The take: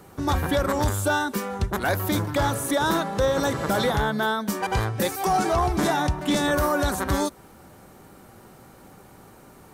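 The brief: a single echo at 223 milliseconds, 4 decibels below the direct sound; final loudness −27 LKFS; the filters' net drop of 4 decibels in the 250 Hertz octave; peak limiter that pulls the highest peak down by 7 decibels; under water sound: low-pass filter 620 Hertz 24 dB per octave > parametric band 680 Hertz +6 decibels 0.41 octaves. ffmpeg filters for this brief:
ffmpeg -i in.wav -af "equalizer=frequency=250:width_type=o:gain=-5.5,alimiter=limit=-21dB:level=0:latency=1,lowpass=frequency=620:width=0.5412,lowpass=frequency=620:width=1.3066,equalizer=frequency=680:width_type=o:width=0.41:gain=6,aecho=1:1:223:0.631,volume=3.5dB" out.wav

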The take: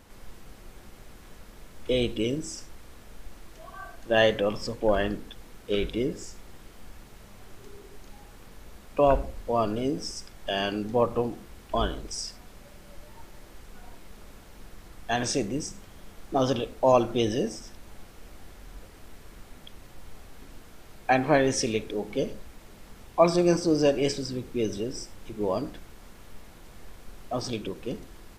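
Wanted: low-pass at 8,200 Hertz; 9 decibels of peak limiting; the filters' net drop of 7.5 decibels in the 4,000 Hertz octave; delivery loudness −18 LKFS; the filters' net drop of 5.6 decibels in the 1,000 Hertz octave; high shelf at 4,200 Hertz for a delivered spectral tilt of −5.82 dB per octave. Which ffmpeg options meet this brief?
ffmpeg -i in.wav -af "lowpass=8200,equalizer=frequency=1000:width_type=o:gain=-8,equalizer=frequency=4000:width_type=o:gain=-8,highshelf=frequency=4200:gain=-4,volume=14dB,alimiter=limit=-5.5dB:level=0:latency=1" out.wav

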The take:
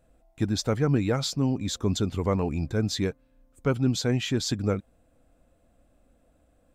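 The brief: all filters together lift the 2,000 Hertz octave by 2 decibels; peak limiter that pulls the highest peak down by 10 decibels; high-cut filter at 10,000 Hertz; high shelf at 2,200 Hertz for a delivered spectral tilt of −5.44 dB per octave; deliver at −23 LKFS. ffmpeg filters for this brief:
ffmpeg -i in.wav -af "lowpass=10000,equalizer=frequency=2000:width_type=o:gain=5.5,highshelf=frequency=2200:gain=-5,volume=8.5dB,alimiter=limit=-12.5dB:level=0:latency=1" out.wav

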